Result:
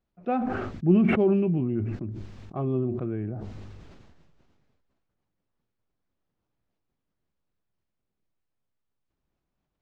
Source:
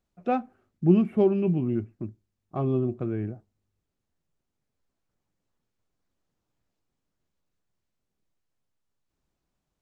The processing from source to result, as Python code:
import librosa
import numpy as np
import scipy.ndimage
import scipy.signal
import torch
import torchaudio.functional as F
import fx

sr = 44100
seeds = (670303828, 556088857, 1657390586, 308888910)

y = fx.air_absorb(x, sr, metres=160.0)
y = fx.sustainer(y, sr, db_per_s=26.0)
y = y * librosa.db_to_amplitude(-1.5)